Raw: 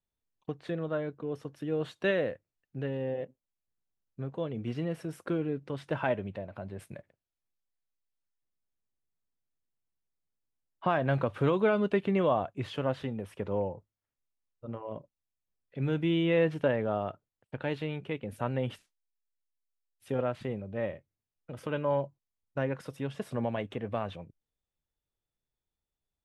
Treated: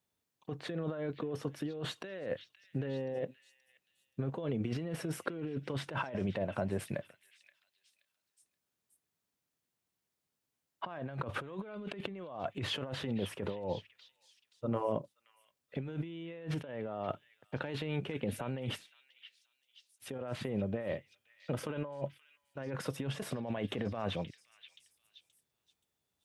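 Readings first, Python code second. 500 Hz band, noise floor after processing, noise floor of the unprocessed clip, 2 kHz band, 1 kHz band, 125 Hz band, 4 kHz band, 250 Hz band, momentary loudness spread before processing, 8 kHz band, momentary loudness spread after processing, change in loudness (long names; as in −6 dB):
−7.5 dB, below −85 dBFS, below −85 dBFS, −6.0 dB, −7.0 dB, −4.0 dB, +1.5 dB, −5.0 dB, 16 LU, can't be measured, 10 LU, −6.5 dB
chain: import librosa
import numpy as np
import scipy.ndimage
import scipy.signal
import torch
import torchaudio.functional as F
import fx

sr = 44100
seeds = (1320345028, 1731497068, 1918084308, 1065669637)

p1 = scipy.signal.sosfilt(scipy.signal.butter(2, 110.0, 'highpass', fs=sr, output='sos'), x)
p2 = fx.over_compress(p1, sr, threshold_db=-39.0, ratio=-1.0)
p3 = p2 + fx.echo_stepped(p2, sr, ms=526, hz=2700.0, octaves=0.7, feedback_pct=70, wet_db=-11.0, dry=0)
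y = F.gain(torch.from_numpy(p3), 1.0).numpy()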